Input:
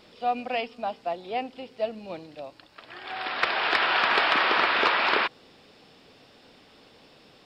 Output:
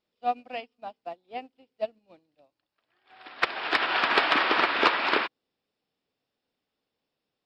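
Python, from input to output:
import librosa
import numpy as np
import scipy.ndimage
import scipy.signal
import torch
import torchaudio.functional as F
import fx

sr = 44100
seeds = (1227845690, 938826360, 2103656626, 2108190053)

y = fx.dynamic_eq(x, sr, hz=290.0, q=3.0, threshold_db=-49.0, ratio=4.0, max_db=6)
y = fx.upward_expand(y, sr, threshold_db=-41.0, expansion=2.5)
y = y * 10.0 ** (2.5 / 20.0)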